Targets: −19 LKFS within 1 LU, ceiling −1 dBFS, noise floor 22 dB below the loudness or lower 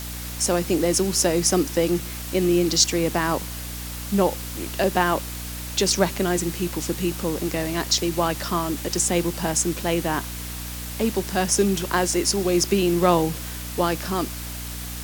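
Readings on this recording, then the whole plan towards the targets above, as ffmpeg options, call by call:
mains hum 60 Hz; hum harmonics up to 300 Hz; level of the hum −32 dBFS; background noise floor −33 dBFS; target noise floor −45 dBFS; integrated loudness −23.0 LKFS; sample peak −3.5 dBFS; target loudness −19.0 LKFS
→ -af "bandreject=frequency=60:width_type=h:width=6,bandreject=frequency=120:width_type=h:width=6,bandreject=frequency=180:width_type=h:width=6,bandreject=frequency=240:width_type=h:width=6,bandreject=frequency=300:width_type=h:width=6"
-af "afftdn=noise_reduction=12:noise_floor=-33"
-af "volume=4dB,alimiter=limit=-1dB:level=0:latency=1"

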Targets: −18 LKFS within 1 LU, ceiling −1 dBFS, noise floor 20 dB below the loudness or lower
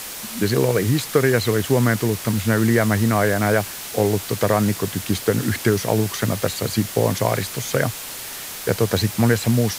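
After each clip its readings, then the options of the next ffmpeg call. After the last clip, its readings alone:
background noise floor −33 dBFS; target noise floor −41 dBFS; integrated loudness −20.5 LKFS; sample peak −4.5 dBFS; target loudness −18.0 LKFS
→ -af "afftdn=noise_reduction=8:noise_floor=-33"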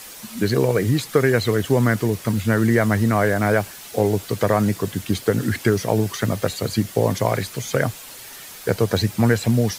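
background noise floor −39 dBFS; target noise floor −41 dBFS
→ -af "afftdn=noise_reduction=6:noise_floor=-39"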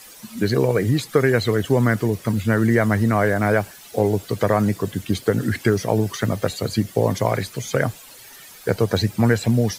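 background noise floor −44 dBFS; integrated loudness −21.0 LKFS; sample peak −5.0 dBFS; target loudness −18.0 LKFS
→ -af "volume=3dB"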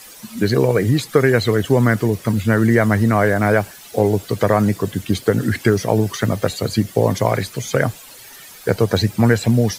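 integrated loudness −18.0 LKFS; sample peak −2.0 dBFS; background noise floor −41 dBFS

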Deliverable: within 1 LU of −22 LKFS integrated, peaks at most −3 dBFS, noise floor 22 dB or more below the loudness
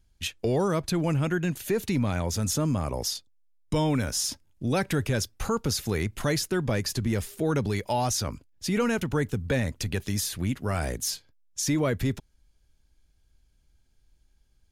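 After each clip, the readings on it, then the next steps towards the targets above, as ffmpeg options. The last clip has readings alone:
integrated loudness −28.0 LKFS; sample peak −15.0 dBFS; target loudness −22.0 LKFS
→ -af "volume=6dB"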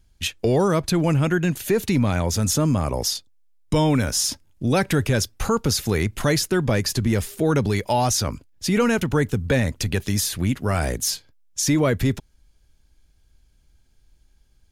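integrated loudness −22.0 LKFS; sample peak −9.0 dBFS; background noise floor −59 dBFS

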